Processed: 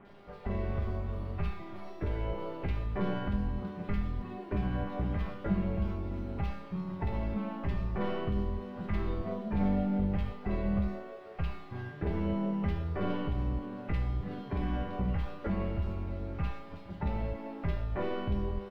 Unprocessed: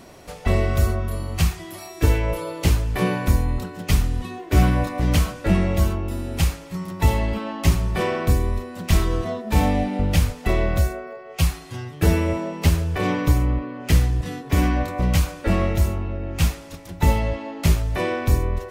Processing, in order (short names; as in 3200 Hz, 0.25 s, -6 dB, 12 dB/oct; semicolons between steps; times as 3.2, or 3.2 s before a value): tracing distortion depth 0.18 ms; high shelf 5600 Hz -4 dB; in parallel at +1 dB: compressor 16:1, threshold -25 dBFS, peak gain reduction 16 dB; on the sum: limiter -10 dBFS, peak gain reduction 7.5 dB; AGC gain up to 3.5 dB; bit-crush 6-bit; harmoniser -4 st -12 dB; air absorption 400 m; resonator 200 Hz, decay 0.57 s, harmonics all, mix 90%; bands offset in time lows, highs 50 ms, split 2300 Hz